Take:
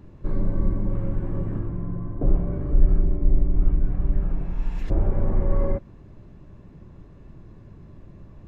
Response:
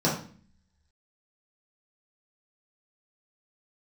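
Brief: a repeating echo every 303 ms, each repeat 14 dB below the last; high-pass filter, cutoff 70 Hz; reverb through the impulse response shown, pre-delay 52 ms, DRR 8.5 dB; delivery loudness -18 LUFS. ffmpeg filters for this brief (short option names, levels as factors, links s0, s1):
-filter_complex "[0:a]highpass=70,aecho=1:1:303|606:0.2|0.0399,asplit=2[s0][s1];[1:a]atrim=start_sample=2205,adelay=52[s2];[s1][s2]afir=irnorm=-1:irlink=0,volume=0.0841[s3];[s0][s3]amix=inputs=2:normalize=0,volume=2.99"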